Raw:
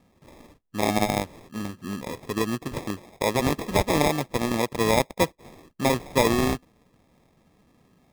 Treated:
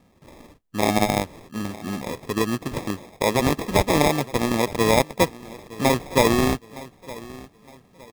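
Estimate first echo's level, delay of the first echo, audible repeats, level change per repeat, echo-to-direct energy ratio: −19.0 dB, 914 ms, 2, −9.5 dB, −18.5 dB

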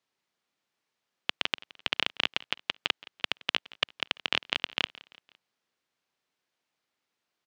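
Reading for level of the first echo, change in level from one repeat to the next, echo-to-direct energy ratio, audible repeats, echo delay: −21.5 dB, −6.0 dB, −20.5 dB, 3, 170 ms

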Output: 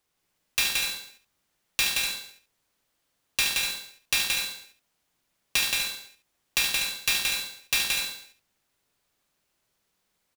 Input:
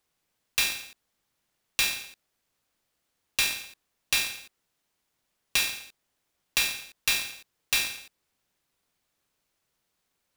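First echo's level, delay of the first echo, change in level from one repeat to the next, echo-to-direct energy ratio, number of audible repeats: −7.5 dB, 74 ms, repeats not evenly spaced, −1.0 dB, 4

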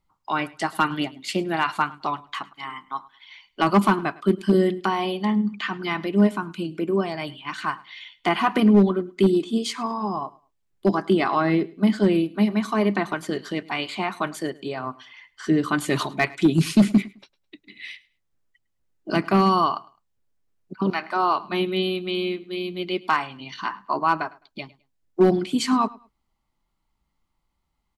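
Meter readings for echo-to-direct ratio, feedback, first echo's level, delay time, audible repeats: −22.0 dB, 23%, −22.0 dB, 105 ms, 2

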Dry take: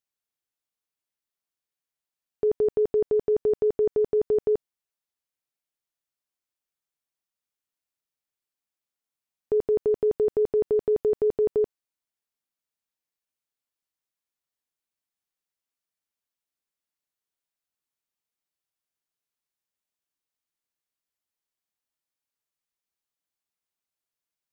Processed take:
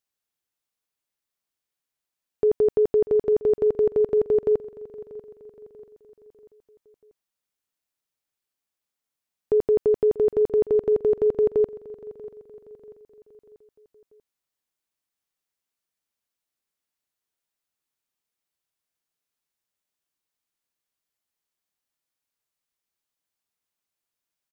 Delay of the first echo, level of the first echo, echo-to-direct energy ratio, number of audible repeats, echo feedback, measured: 639 ms, −18.0 dB, −17.0 dB, 3, 47%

